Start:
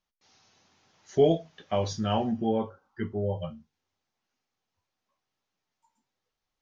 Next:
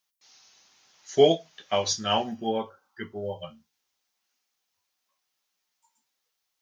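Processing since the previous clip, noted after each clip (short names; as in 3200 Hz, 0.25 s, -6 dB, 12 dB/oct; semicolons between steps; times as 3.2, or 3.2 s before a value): tilt +3.5 dB/oct; upward expander 1.5:1, over -37 dBFS; gain +8 dB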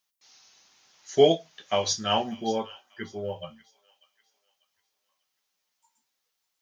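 thin delay 0.593 s, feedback 32%, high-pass 1700 Hz, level -17 dB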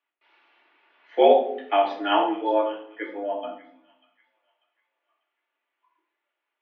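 shoebox room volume 800 m³, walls furnished, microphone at 2.2 m; mistuned SSB +95 Hz 180–2700 Hz; gain +2.5 dB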